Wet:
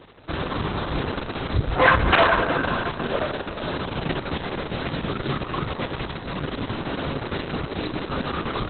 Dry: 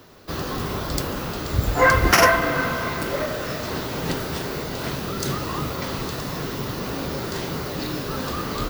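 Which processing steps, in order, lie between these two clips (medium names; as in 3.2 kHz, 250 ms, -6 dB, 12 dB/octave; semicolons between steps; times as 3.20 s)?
1.94–4.03 s: band-stop 2 kHz, Q 6.5; valve stage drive 13 dB, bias 0.25; trim +2.5 dB; Opus 6 kbps 48 kHz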